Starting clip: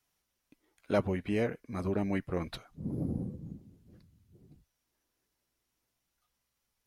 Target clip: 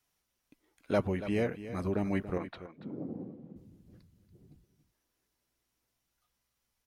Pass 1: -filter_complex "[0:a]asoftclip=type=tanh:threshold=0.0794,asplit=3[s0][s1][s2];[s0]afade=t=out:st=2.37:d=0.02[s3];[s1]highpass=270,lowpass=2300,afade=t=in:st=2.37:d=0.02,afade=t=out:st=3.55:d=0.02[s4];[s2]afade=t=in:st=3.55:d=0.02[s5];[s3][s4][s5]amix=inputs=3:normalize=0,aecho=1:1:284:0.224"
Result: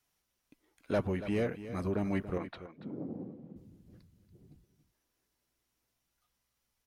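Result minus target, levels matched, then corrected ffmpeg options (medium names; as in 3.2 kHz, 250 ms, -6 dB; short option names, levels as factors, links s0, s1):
saturation: distortion +18 dB
-filter_complex "[0:a]asoftclip=type=tanh:threshold=0.299,asplit=3[s0][s1][s2];[s0]afade=t=out:st=2.37:d=0.02[s3];[s1]highpass=270,lowpass=2300,afade=t=in:st=2.37:d=0.02,afade=t=out:st=3.55:d=0.02[s4];[s2]afade=t=in:st=3.55:d=0.02[s5];[s3][s4][s5]amix=inputs=3:normalize=0,aecho=1:1:284:0.224"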